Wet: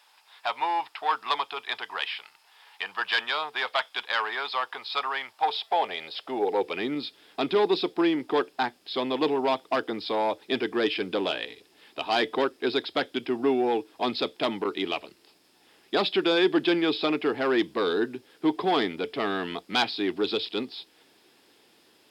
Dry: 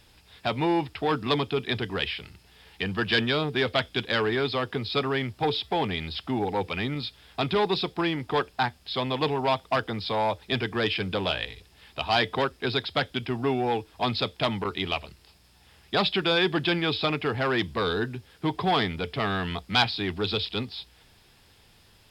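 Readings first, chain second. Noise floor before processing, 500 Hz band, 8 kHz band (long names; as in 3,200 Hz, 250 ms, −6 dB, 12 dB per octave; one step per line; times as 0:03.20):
−58 dBFS, +1.0 dB, can't be measured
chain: soft clipping −10 dBFS, distortion −29 dB
high-pass filter sweep 920 Hz → 310 Hz, 0:05.28–0:06.94
level −2 dB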